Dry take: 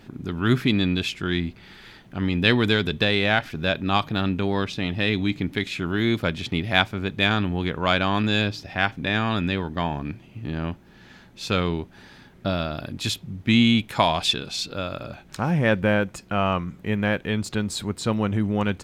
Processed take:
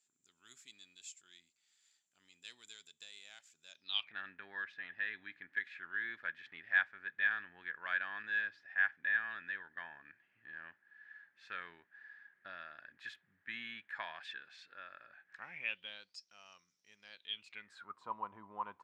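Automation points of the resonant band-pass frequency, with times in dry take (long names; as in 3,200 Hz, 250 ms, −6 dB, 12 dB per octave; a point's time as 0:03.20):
resonant band-pass, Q 14
0:03.70 7,300 Hz
0:04.16 1,700 Hz
0:15.37 1,700 Hz
0:16.25 5,600 Hz
0:16.98 5,600 Hz
0:18.04 1,000 Hz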